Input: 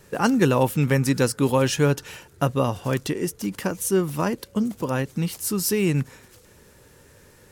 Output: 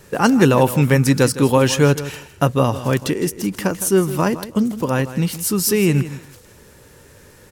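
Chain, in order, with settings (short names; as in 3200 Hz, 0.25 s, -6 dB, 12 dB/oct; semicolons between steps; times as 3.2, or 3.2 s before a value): feedback echo 0.161 s, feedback 18%, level -14 dB; gain +5.5 dB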